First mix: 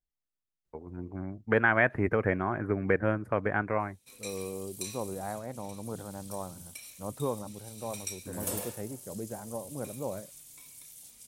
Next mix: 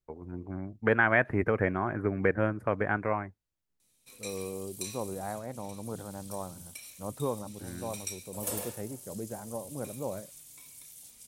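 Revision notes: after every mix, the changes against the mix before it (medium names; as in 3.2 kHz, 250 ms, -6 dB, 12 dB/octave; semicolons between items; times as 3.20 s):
first voice: entry -0.65 s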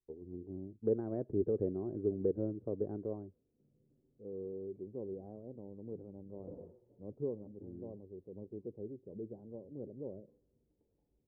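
background: entry -2.00 s; master: add four-pole ladder low-pass 460 Hz, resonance 55%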